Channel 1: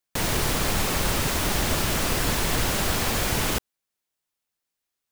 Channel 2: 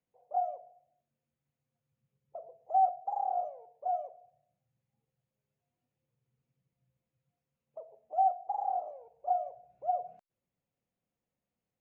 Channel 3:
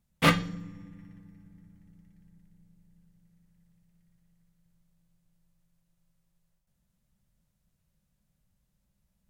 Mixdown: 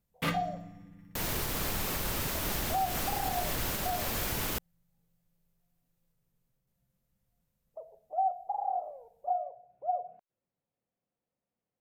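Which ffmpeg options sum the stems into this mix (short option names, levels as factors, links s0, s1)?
-filter_complex "[0:a]adelay=1000,volume=0.355[s0];[1:a]lowpass=f=1200:p=1,lowshelf=f=220:g=-8,volume=1.33[s1];[2:a]acontrast=84,volume=0.251[s2];[s0][s1][s2]amix=inputs=3:normalize=0,equalizer=f=14000:t=o:w=0.27:g=10.5,alimiter=limit=0.0841:level=0:latency=1:release=132"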